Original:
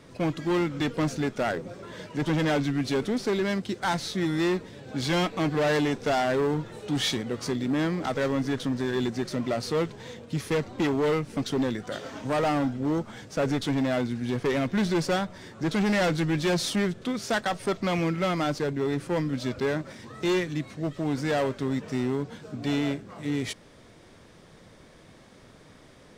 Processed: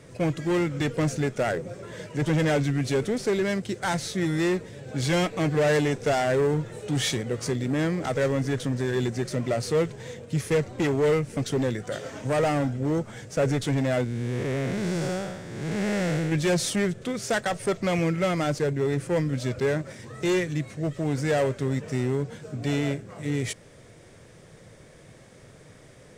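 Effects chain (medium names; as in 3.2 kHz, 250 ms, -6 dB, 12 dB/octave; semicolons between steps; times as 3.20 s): 14.04–16.32 s: spectral blur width 288 ms; graphic EQ 125/250/500/1000/2000/4000/8000 Hz +7/-4/+5/-4/+3/-4/+7 dB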